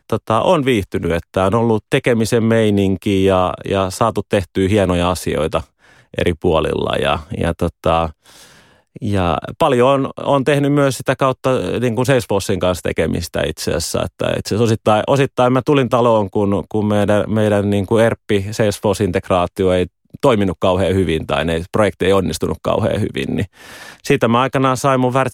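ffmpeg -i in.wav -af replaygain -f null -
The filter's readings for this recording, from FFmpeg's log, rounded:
track_gain = -2.8 dB
track_peak = 0.554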